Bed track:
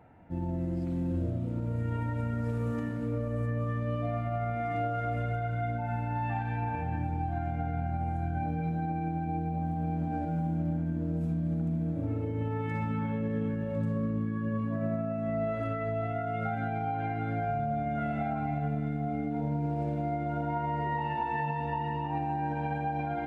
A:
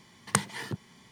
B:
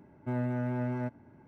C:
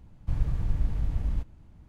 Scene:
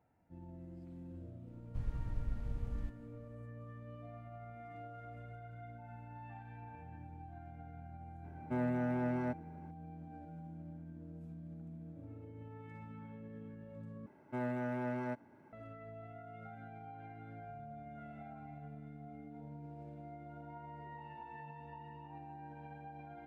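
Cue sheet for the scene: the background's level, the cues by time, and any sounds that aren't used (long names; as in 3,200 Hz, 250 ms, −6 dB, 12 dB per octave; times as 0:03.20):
bed track −18.5 dB
0:01.47: mix in C −12 dB
0:08.24: mix in B −1 dB + high-pass filter 160 Hz
0:14.06: overwrite with B −0.5 dB + high-pass filter 380 Hz 6 dB per octave
not used: A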